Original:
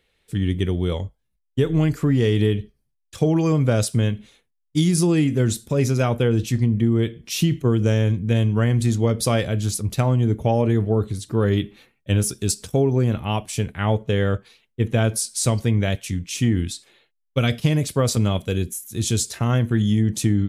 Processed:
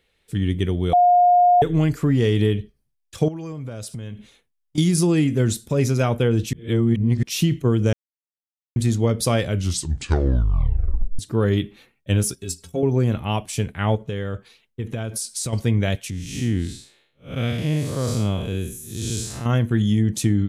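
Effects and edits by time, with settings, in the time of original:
0.93–1.62 s: bleep 712 Hz -11 dBFS
3.28–4.78 s: compression 5:1, threshold -30 dBFS
6.53–7.23 s: reverse
7.93–8.76 s: mute
9.46 s: tape stop 1.73 s
12.35–12.83 s: inharmonic resonator 81 Hz, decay 0.21 s, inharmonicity 0.03
13.95–15.53 s: compression, threshold -23 dBFS
16.10–19.46 s: spectral blur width 174 ms

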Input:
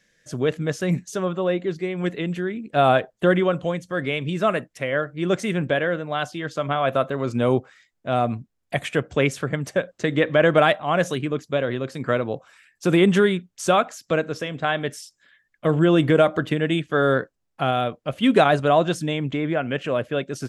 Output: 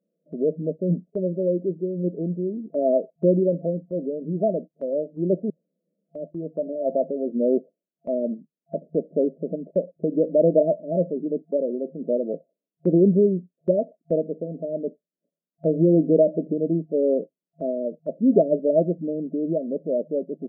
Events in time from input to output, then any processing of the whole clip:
5.50–6.15 s: room tone
whole clip: FFT band-pass 160–680 Hz; gate -40 dBFS, range -6 dB

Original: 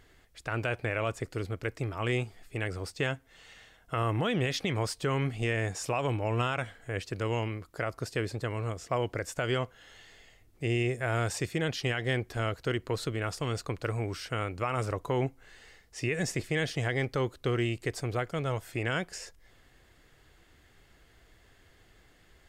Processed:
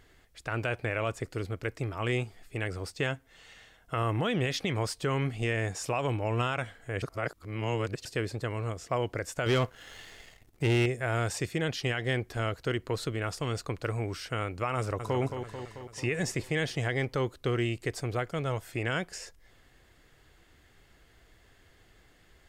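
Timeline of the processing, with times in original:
7.02–8.05 s: reverse
9.46–10.86 s: waveshaping leveller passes 2
14.77–15.21 s: echo throw 220 ms, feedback 65%, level -7.5 dB

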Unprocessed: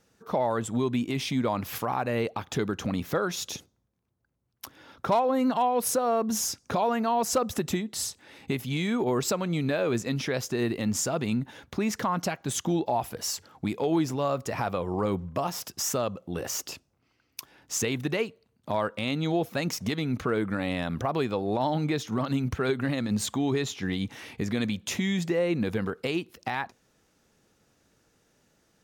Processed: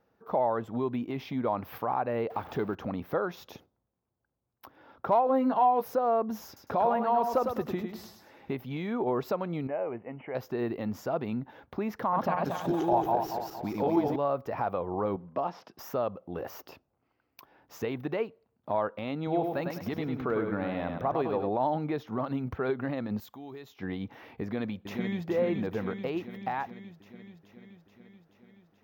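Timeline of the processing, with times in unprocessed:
2.30–2.75 s: jump at every zero crossing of -38 dBFS
5.25–5.85 s: doubling 15 ms -5.5 dB
6.46–8.55 s: feedback delay 104 ms, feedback 33%, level -6 dB
9.67–10.35 s: rippled Chebyshev low-pass 3 kHz, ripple 9 dB
12.01–14.16 s: backward echo that repeats 115 ms, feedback 66%, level -1 dB
15.16–15.79 s: Chebyshev band-pass 190–5100 Hz
19.17–21.49 s: feedback delay 102 ms, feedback 38%, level -5 dB
23.20–23.79 s: pre-emphasis filter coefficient 0.8
24.42–25.27 s: echo throw 430 ms, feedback 70%, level -5 dB
whole clip: FFT filter 160 Hz 0 dB, 800 Hz +8 dB, 5.4 kHz -11 dB, 8.8 kHz -28 dB, 15 kHz +2 dB; trim -7 dB

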